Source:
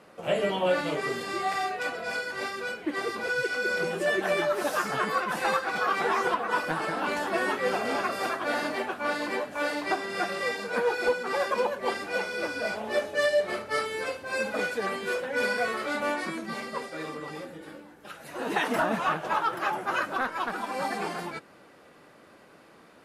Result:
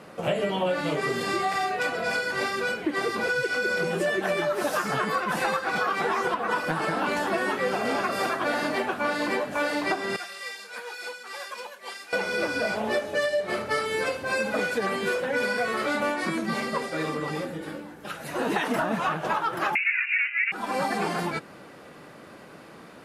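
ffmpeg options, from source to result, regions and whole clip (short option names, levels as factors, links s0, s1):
-filter_complex "[0:a]asettb=1/sr,asplit=3[s0][s1][s2];[s0]atrim=end=10.164[s3];[s1]atrim=start=10.16:end=12.13,asetpts=PTS-STARTPTS,afade=t=in:d=0.004:c=qsin,afade=t=out:st=1.966:d=0.004:c=qsin,lowpass=f=3800:p=1,aderivative[s4];[s2]atrim=start=12.126[s5];[s3][s4]acrossfade=d=0.004:c1=hsin:c2=qsin[s6];[s6][s5]acrossfade=d=0.004:c1=qsin:c2=hsin,asettb=1/sr,asplit=3[s7][s8][s9];[s7]atrim=end=19.754[s10];[s8]atrim=start=19.75:end=20.52,asetpts=PTS-STARTPTS,afade=t=in:d=0.004:c=qsin,afade=t=out:st=0.766:d=0.004:c=qsin,lowpass=f=2600:t=q:w=0.5098,lowpass=f=2600:t=q:w=0.6013,lowpass=f=2600:t=q:w=0.9,lowpass=f=2600:t=q:w=2.563,afreqshift=-3000,highpass=f=2200:t=q:w=5.5[s11];[s9]atrim=start=20.516[s12];[s10][s11]acrossfade=d=0.004:c1=hsin:c2=qsin[s13];[s13][s12]acrossfade=d=0.004:c1=qsin:c2=hsin,equalizer=f=150:t=o:w=1.3:g=4.5,acompressor=threshold=0.0316:ratio=6,volume=2.24"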